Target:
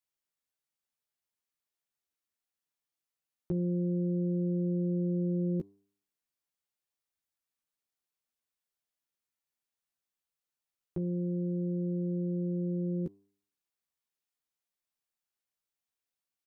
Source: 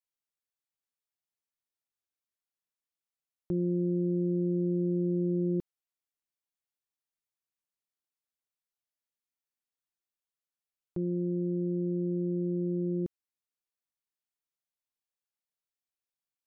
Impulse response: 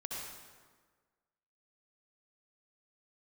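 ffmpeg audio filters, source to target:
-filter_complex "[0:a]asplit=2[link_01][link_02];[link_02]adelay=13,volume=-4.5dB[link_03];[link_01][link_03]amix=inputs=2:normalize=0,bandreject=frequency=99.55:width_type=h:width=4,bandreject=frequency=199.1:width_type=h:width=4,bandreject=frequency=298.65:width_type=h:width=4,bandreject=frequency=398.2:width_type=h:width=4,bandreject=frequency=497.75:width_type=h:width=4,bandreject=frequency=597.3:width_type=h:width=4,bandreject=frequency=696.85:width_type=h:width=4,bandreject=frequency=796.4:width_type=h:width=4,bandreject=frequency=895.95:width_type=h:width=4,bandreject=frequency=995.5:width_type=h:width=4,bandreject=frequency=1095.05:width_type=h:width=4"

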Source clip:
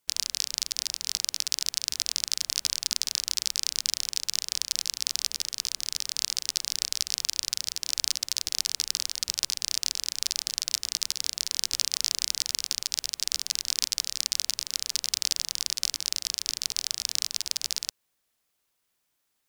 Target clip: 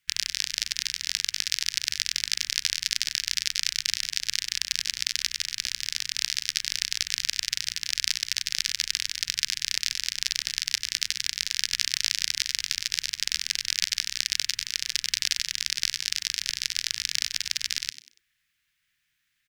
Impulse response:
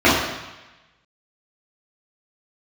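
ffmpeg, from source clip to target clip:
-filter_complex "[0:a]firequalizer=gain_entry='entry(140,0);entry(220,-11);entry(590,-28);entry(1700,7);entry(4400,-3);entry(9000,-9)':delay=0.05:min_phase=1,asplit=2[link_01][link_02];[link_02]asplit=3[link_03][link_04][link_05];[link_03]adelay=95,afreqshift=110,volume=-14dB[link_06];[link_04]adelay=190,afreqshift=220,volume=-23.4dB[link_07];[link_05]adelay=285,afreqshift=330,volume=-32.7dB[link_08];[link_06][link_07][link_08]amix=inputs=3:normalize=0[link_09];[link_01][link_09]amix=inputs=2:normalize=0,volume=4.5dB"

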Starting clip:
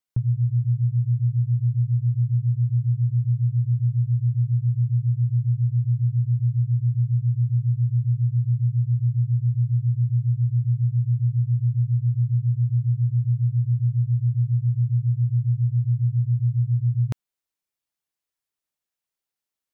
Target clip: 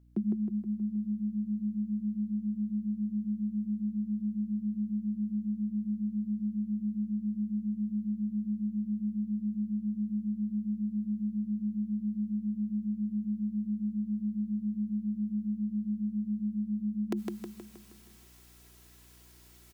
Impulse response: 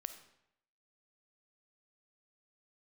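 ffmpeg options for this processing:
-filter_complex "[0:a]highpass=120,equalizer=frequency=260:width=4:gain=12,aecho=1:1:3.2:0.43,areverse,acompressor=mode=upward:threshold=-36dB:ratio=2.5,areverse,afreqshift=89,asplit=2[link_01][link_02];[link_02]aecho=0:1:158|316|474|632|790|948|1106:0.668|0.354|0.188|0.0995|0.0527|0.0279|0.0148[link_03];[link_01][link_03]amix=inputs=2:normalize=0,aeval=exprs='val(0)+0.00158*(sin(2*PI*60*n/s)+sin(2*PI*2*60*n/s)/2+sin(2*PI*3*60*n/s)/3+sin(2*PI*4*60*n/s)/4+sin(2*PI*5*60*n/s)/5)':channel_layout=same,volume=-2.5dB"

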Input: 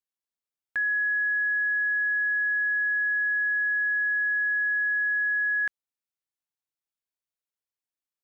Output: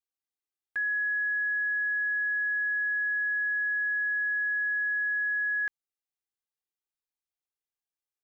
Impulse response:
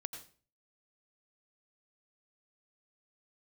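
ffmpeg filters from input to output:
-af "aecho=1:1:2.5:0.99,volume=-7.5dB"

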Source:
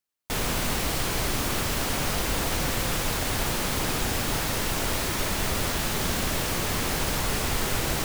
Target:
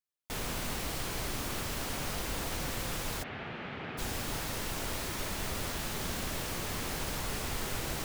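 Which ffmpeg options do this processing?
ffmpeg -i in.wav -filter_complex "[0:a]asplit=3[link_01][link_02][link_03];[link_01]afade=type=out:start_time=3.22:duration=0.02[link_04];[link_02]highpass=130,equalizer=frequency=300:width_type=q:width=4:gain=-5,equalizer=frequency=540:width_type=q:width=4:gain=-4,equalizer=frequency=1000:width_type=q:width=4:gain=-6,lowpass=frequency=2800:width=0.5412,lowpass=frequency=2800:width=1.3066,afade=type=in:start_time=3.22:duration=0.02,afade=type=out:start_time=3.97:duration=0.02[link_05];[link_03]afade=type=in:start_time=3.97:duration=0.02[link_06];[link_04][link_05][link_06]amix=inputs=3:normalize=0,volume=-9dB" out.wav

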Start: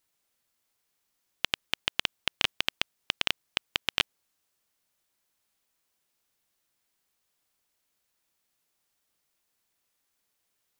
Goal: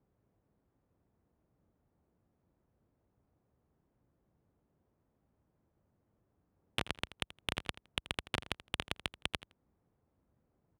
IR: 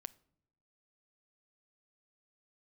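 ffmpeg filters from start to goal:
-filter_complex "[0:a]areverse,highpass=57,lowshelf=frequency=190:gain=11.5,acompressor=threshold=-32dB:ratio=6,highshelf=frequency=3600:gain=-10.5,adynamicsmooth=sensitivity=2.5:basefreq=670,alimiter=level_in=5dB:limit=-24dB:level=0:latency=1,volume=-5dB,asplit=2[link_01][link_02];[link_02]aecho=0:1:82|164:0.141|0.0268[link_03];[link_01][link_03]amix=inputs=2:normalize=0,volume=13dB"

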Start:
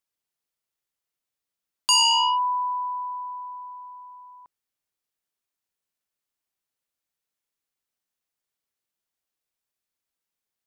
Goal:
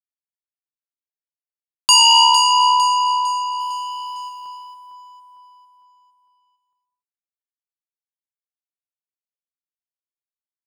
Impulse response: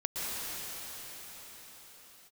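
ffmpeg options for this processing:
-filter_complex "[0:a]adynamicequalizer=threshold=0.00282:dfrequency=560:dqfactor=5:tfrequency=560:tqfactor=5:attack=5:release=100:ratio=0.375:range=3:mode=boostabove:tftype=bell,acrusher=bits=11:mix=0:aa=0.000001,asplit=3[link_01][link_02][link_03];[link_01]afade=type=out:start_time=3.59:duration=0.02[link_04];[link_02]asplit=2[link_05][link_06];[link_06]highpass=frequency=720:poles=1,volume=25dB,asoftclip=type=tanh:threshold=-34dB[link_07];[link_05][link_07]amix=inputs=2:normalize=0,lowpass=frequency=7200:poles=1,volume=-6dB,afade=type=in:start_time=3.59:duration=0.02,afade=type=out:start_time=4.28:duration=0.02[link_08];[link_03]afade=type=in:start_time=4.28:duration=0.02[link_09];[link_04][link_08][link_09]amix=inputs=3:normalize=0,aecho=1:1:454|908|1362|1816|2270:0.398|0.175|0.0771|0.0339|0.0149,asplit=2[link_10][link_11];[1:a]atrim=start_sample=2205,afade=type=out:start_time=0.35:duration=0.01,atrim=end_sample=15876[link_12];[link_11][link_12]afir=irnorm=-1:irlink=0,volume=-8dB[link_13];[link_10][link_13]amix=inputs=2:normalize=0,volume=4.5dB"

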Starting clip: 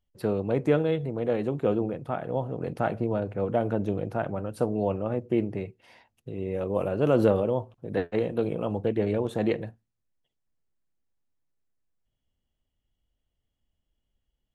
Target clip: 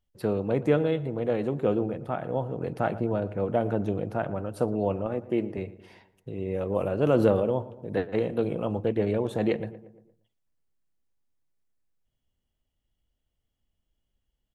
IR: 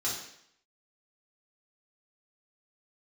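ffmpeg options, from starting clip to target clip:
-filter_complex "[0:a]asettb=1/sr,asplit=3[link_01][link_02][link_03];[link_01]atrim=end=5.064[link_04];[link_02]atrim=start=5.06:end=5.58,asetpts=PTS-STARTPTS,afade=type=in:duration=0.004:curve=qsin,afade=type=out:start_time=0.516:duration=0.004:curve=qsin,highpass=frequency=210:poles=1[link_05];[link_03]atrim=start=5.576[link_06];[link_04][link_05]acrossfade=duration=0.004:curve1=hsin:curve2=qsin[link_07];[link_07][link_06]acrossfade=duration=0.004:curve1=qsin:curve2=hsin,asplit=2[link_08][link_09];[link_09]adelay=116,lowpass=frequency=1800:poles=1,volume=-16dB,asplit=2[link_10][link_11];[link_11]adelay=116,lowpass=frequency=1800:poles=1,volume=0.53,asplit=2[link_12][link_13];[link_13]adelay=116,lowpass=frequency=1800:poles=1,volume=0.53,asplit=2[link_14][link_15];[link_15]adelay=116,lowpass=frequency=1800:poles=1,volume=0.53,asplit=2[link_16][link_17];[link_17]adelay=116,lowpass=frequency=1800:poles=1,volume=0.53[link_18];[link_10][link_12][link_14][link_16][link_18]amix=inputs=5:normalize=0[link_19];[link_08][link_19]amix=inputs=2:normalize=0"

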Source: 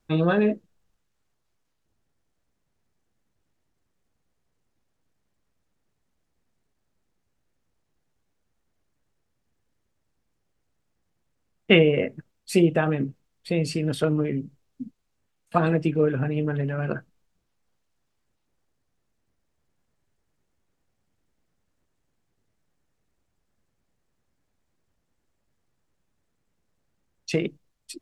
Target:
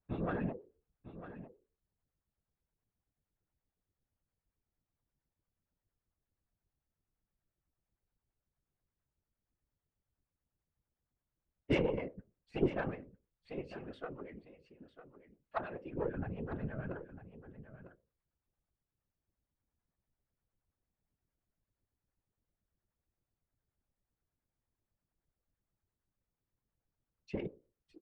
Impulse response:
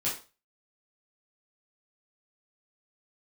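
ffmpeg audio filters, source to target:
-filter_complex "[0:a]lowpass=1900,bandreject=frequency=60:width_type=h:width=6,bandreject=frequency=120:width_type=h:width=6,bandreject=frequency=180:width_type=h:width=6,bandreject=frequency=240:width_type=h:width=6,bandreject=frequency=300:width_type=h:width=6,bandreject=frequency=360:width_type=h:width=6,bandreject=frequency=420:width_type=h:width=6,bandreject=frequency=480:width_type=h:width=6,bandreject=frequency=540:width_type=h:width=6,asettb=1/sr,asplit=3[link_01][link_02][link_03];[link_01]atrim=end=12.944[link_04];[link_02]atrim=start=12.94:end=15.91,asetpts=PTS-STARTPTS,afade=type=in:duration=0.004:curve=qsin,afade=type=out:start_time=2.966:duration=0.004:curve=qsin,equalizer=frequency=170:width=0.59:gain=-14.5[link_05];[link_03]atrim=start=15.906[link_06];[link_04][link_05]acrossfade=duration=0.004:curve1=hsin:curve2=qsin[link_07];[link_07][link_06]acrossfade=duration=0.004:curve1=qsin:curve2=hsin,aeval=exprs='0.708*(cos(1*acos(clip(val(0)/0.708,-1,1)))-cos(1*PI/2))+0.0631*(cos(6*acos(clip(val(0)/0.708,-1,1)))-cos(6*PI/2))':channel_layout=same,afftfilt=real='hypot(re,im)*cos(2*PI*random(0))':imag='hypot(re,im)*sin(2*PI*random(1))':win_size=512:overlap=0.75,acrossover=split=540[link_08][link_09];[link_08]aeval=exprs='val(0)*(1-0.7/2+0.7/2*cos(2*PI*8.7*n/s))':channel_layout=same[link_10];[link_09]aeval=exprs='val(0)*(1-0.7/2-0.7/2*cos(2*PI*8.7*n/s))':channel_layout=same[link_11];[link_10][link_11]amix=inputs=2:normalize=0,aecho=1:1:951:0.224,volume=-4dB"

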